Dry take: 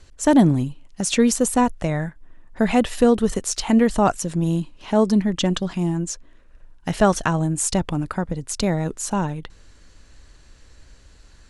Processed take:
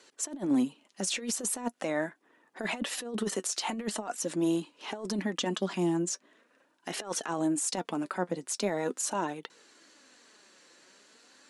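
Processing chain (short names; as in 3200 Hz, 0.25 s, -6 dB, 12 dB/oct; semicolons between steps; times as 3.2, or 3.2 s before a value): HPF 240 Hz 24 dB/oct; low shelf 410 Hz -2.5 dB; negative-ratio compressor -24 dBFS, ratio -0.5; limiter -17 dBFS, peak gain reduction 9 dB; flange 0.42 Hz, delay 2 ms, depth 3.9 ms, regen +59%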